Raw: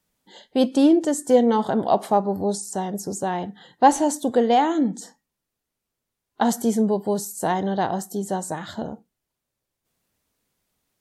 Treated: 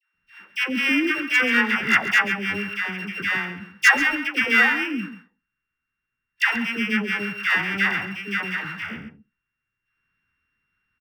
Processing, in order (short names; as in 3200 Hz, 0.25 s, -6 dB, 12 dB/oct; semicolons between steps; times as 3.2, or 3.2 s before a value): sample sorter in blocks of 16 samples; EQ curve 120 Hz 0 dB, 390 Hz -8 dB, 650 Hz -18 dB, 1500 Hz +15 dB, 7600 Hz -18 dB; overloaded stage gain 6.5 dB; dispersion lows, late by 0.146 s, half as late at 740 Hz; on a send: echo 0.136 s -12 dB; on the sum: gain -1 dB